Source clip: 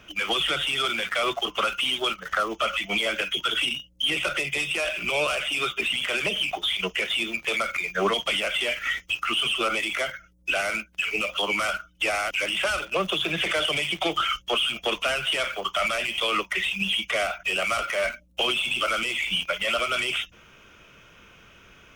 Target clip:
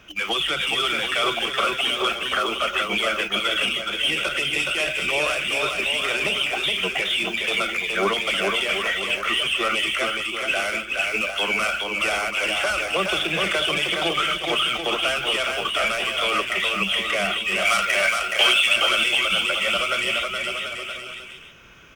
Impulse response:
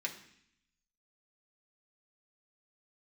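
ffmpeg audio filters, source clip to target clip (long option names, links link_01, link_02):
-filter_complex "[0:a]asettb=1/sr,asplit=3[link_01][link_02][link_03];[link_01]atrim=end=17.654[link_04];[link_02]atrim=start=17.65:end=18.76,asetpts=PTS-STARTPTS,afade=type=in:duration=0.004:curve=qsin,afade=type=out:start_time=1.106:duration=0.004:curve=qsin,tiltshelf=frequency=630:gain=-7[link_05];[link_03]atrim=start=18.756[link_06];[link_04][link_05]acrossfade=duration=0.004:curve1=hsin:curve2=qsin[link_07];[link_07][link_06]acrossfade=duration=0.004:curve1=qsin:curve2=hsin,aecho=1:1:420|735|971.2|1148|1281:0.631|0.398|0.251|0.158|0.1,asplit=2[link_08][link_09];[1:a]atrim=start_sample=2205[link_10];[link_09][link_10]afir=irnorm=-1:irlink=0,volume=-15.5dB[link_11];[link_08][link_11]amix=inputs=2:normalize=0"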